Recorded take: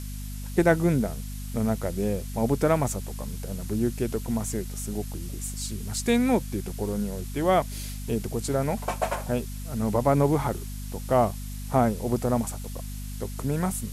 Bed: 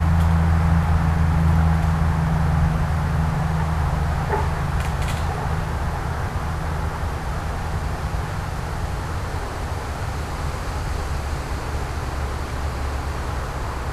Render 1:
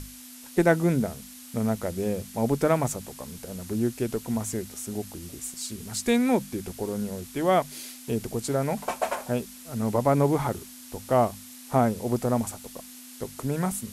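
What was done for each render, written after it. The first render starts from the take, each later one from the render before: hum notches 50/100/150/200 Hz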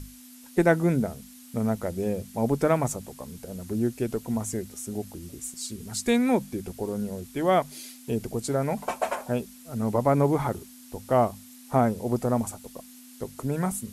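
noise reduction 6 dB, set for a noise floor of -45 dBFS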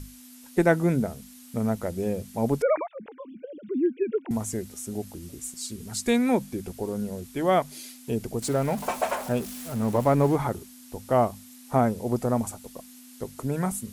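2.62–4.31 s: formants replaced by sine waves; 8.42–10.36 s: jump at every zero crossing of -35 dBFS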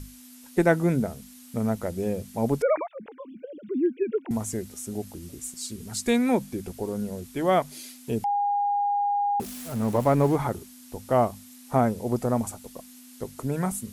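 8.24–9.40 s: bleep 814 Hz -21.5 dBFS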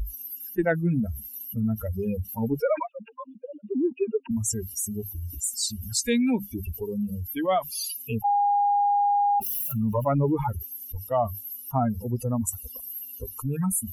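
expander on every frequency bin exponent 3; level flattener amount 70%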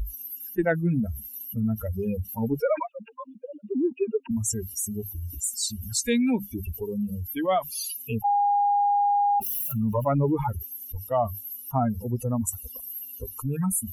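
band-stop 4.9 kHz, Q 10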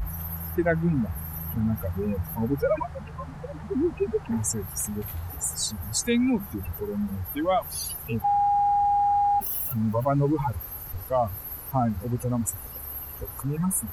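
add bed -18.5 dB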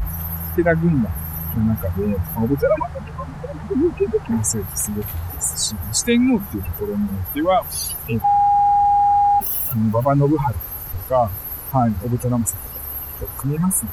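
trim +7 dB

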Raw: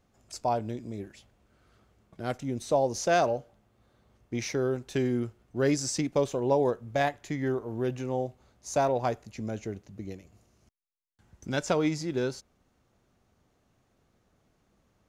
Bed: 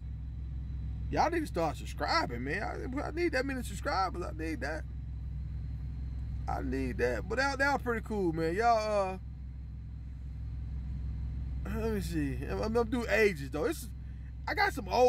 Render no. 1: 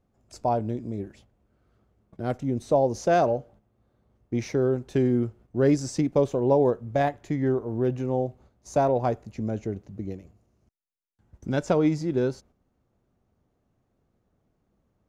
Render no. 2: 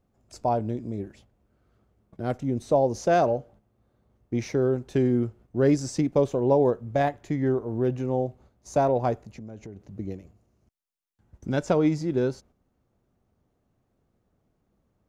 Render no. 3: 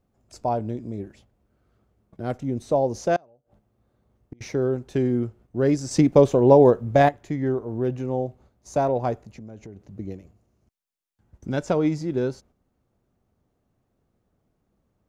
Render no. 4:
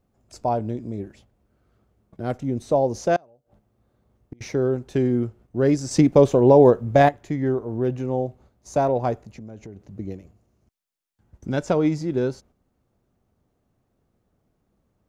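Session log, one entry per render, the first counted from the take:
gate -55 dBFS, range -7 dB; tilt shelf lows +6 dB, about 1.2 kHz
9.15–9.98 s: compression, threshold -37 dBFS
3.16–4.41 s: inverted gate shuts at -26 dBFS, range -32 dB; 5.91–7.09 s: gain +7 dB
trim +1.5 dB; peak limiter -3 dBFS, peak gain reduction 3 dB

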